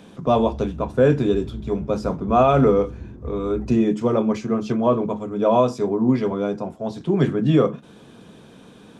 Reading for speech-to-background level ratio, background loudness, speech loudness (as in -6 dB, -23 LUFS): 16.0 dB, -37.0 LUFS, -21.0 LUFS